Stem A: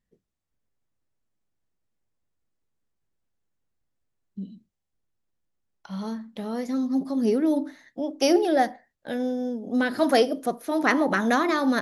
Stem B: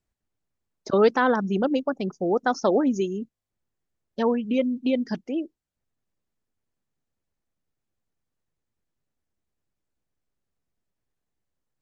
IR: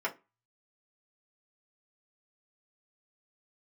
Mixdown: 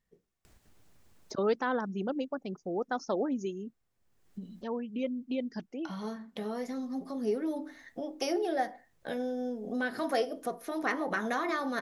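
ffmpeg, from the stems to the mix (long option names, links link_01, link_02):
-filter_complex "[0:a]acompressor=threshold=-39dB:ratio=2,volume=-1dB,asplit=3[link_01][link_02][link_03];[link_02]volume=-9dB[link_04];[1:a]acompressor=mode=upward:threshold=-27dB:ratio=2.5,adelay=450,volume=-10dB[link_05];[link_03]apad=whole_len=541060[link_06];[link_05][link_06]sidechaincompress=threshold=-42dB:ratio=8:attack=7.7:release=929[link_07];[2:a]atrim=start_sample=2205[link_08];[link_04][link_08]afir=irnorm=-1:irlink=0[link_09];[link_01][link_07][link_09]amix=inputs=3:normalize=0"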